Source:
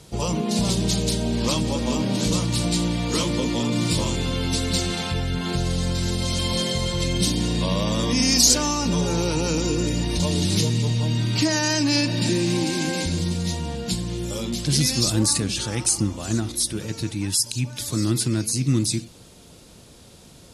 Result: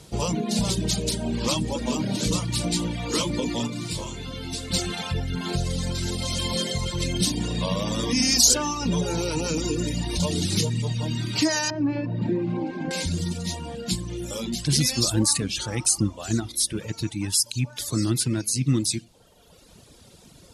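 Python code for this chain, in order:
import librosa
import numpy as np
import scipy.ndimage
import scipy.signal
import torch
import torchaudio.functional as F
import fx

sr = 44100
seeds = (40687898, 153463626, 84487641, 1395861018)

y = fx.lowpass(x, sr, hz=1200.0, slope=12, at=(11.7, 12.91))
y = fx.dereverb_blind(y, sr, rt60_s=1.3)
y = fx.comb_fb(y, sr, f0_hz=69.0, decay_s=0.5, harmonics='all', damping=0.0, mix_pct=60, at=(3.66, 4.7), fade=0.02)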